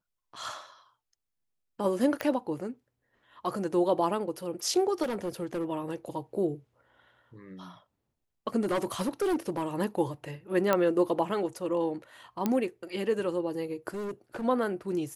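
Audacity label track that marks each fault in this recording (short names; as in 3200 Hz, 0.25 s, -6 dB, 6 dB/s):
2.210000	2.210000	pop -17 dBFS
5.020000	5.650000	clipped -27.5 dBFS
8.630000	9.680000	clipped -24 dBFS
10.730000	10.730000	pop -11 dBFS
12.460000	12.460000	pop -14 dBFS
13.940000	14.450000	clipped -32 dBFS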